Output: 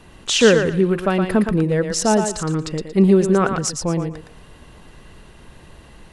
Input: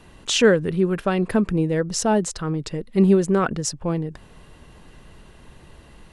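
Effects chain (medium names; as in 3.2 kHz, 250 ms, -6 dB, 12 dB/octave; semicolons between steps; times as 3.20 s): thinning echo 115 ms, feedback 25%, high-pass 420 Hz, level -5 dB; trim +2.5 dB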